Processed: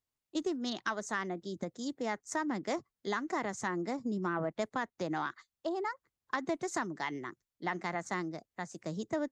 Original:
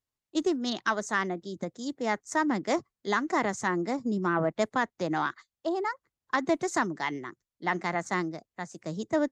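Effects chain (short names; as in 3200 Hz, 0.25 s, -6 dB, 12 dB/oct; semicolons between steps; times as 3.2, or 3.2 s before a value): compressor 2:1, threshold -33 dBFS, peak gain reduction 7.5 dB; gain -1.5 dB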